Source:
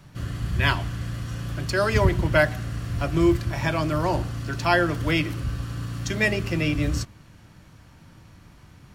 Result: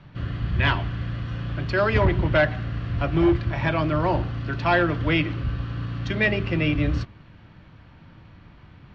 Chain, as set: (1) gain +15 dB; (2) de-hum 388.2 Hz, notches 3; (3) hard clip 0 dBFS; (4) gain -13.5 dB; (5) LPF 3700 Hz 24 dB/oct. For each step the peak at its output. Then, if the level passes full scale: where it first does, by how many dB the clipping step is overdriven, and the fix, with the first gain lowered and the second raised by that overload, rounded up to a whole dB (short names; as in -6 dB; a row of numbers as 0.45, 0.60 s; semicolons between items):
+10.0, +9.5, 0.0, -13.5, -12.0 dBFS; step 1, 9.5 dB; step 1 +5 dB, step 4 -3.5 dB